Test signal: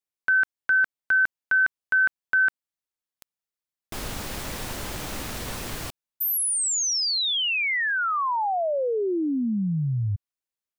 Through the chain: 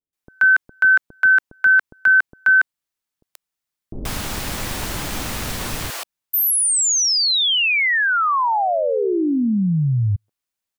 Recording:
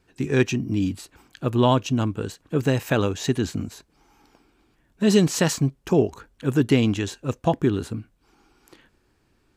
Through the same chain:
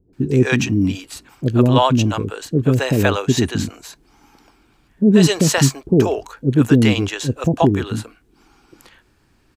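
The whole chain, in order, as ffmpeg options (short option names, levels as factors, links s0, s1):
-filter_complex "[0:a]acrossover=split=480[s0][s1];[s1]adelay=130[s2];[s0][s2]amix=inputs=2:normalize=0,volume=2.24"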